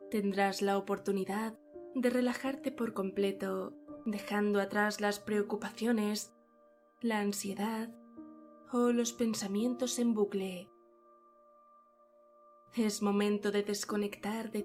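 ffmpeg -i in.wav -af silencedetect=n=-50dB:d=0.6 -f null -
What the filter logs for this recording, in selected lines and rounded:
silence_start: 6.28
silence_end: 7.02 | silence_duration: 0.74
silence_start: 10.64
silence_end: 12.73 | silence_duration: 2.09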